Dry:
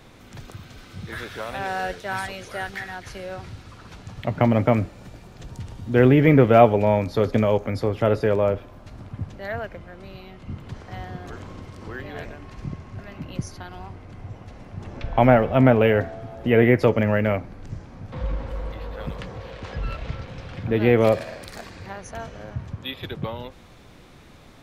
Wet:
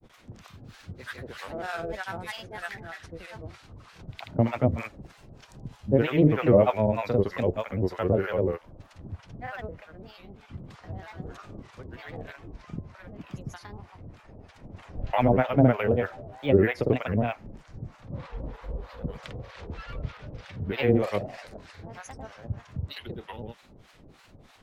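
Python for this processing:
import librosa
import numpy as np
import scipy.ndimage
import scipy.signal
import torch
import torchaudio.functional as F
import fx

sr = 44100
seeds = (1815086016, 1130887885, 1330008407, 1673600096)

y = fx.granulator(x, sr, seeds[0], grain_ms=100.0, per_s=20.0, spray_ms=100.0, spread_st=3)
y = fx.harmonic_tremolo(y, sr, hz=3.2, depth_pct=100, crossover_hz=710.0)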